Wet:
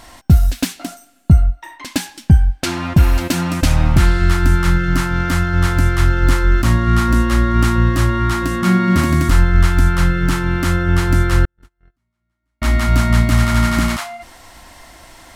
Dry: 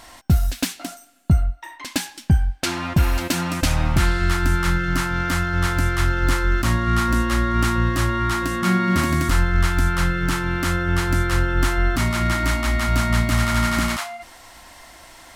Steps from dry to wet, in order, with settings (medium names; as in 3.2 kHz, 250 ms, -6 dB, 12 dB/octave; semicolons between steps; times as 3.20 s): 11.45–12.62 s: gate -11 dBFS, range -59 dB; bass shelf 400 Hz +5.5 dB; trim +1.5 dB